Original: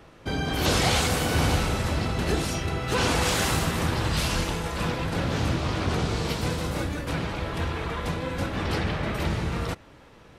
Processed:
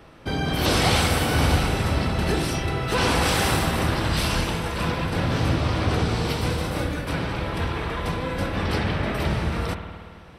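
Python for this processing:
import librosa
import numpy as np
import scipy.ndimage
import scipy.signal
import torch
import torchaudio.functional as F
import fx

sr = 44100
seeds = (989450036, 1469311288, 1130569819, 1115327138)

y = fx.notch(x, sr, hz=6800.0, q=5.4)
y = fx.rev_spring(y, sr, rt60_s=1.9, pass_ms=(53,), chirp_ms=70, drr_db=6.5)
y = F.gain(torch.from_numpy(y), 2.0).numpy()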